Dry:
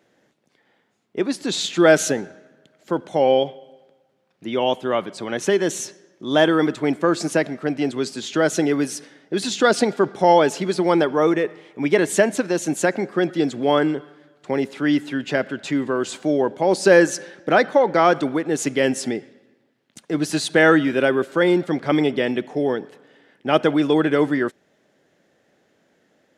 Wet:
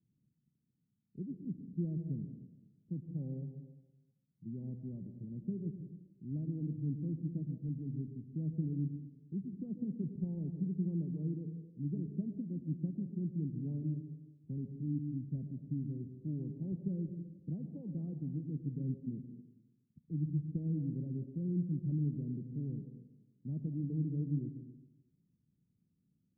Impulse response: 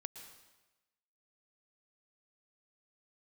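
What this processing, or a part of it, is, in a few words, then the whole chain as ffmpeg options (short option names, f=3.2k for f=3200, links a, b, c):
club heard from the street: -filter_complex "[0:a]alimiter=limit=-6dB:level=0:latency=1:release=298,lowpass=f=170:w=0.5412,lowpass=f=170:w=1.3066[a];[1:a]atrim=start_sample=2205[b];[a][b]afir=irnorm=-1:irlink=0,volume=2dB"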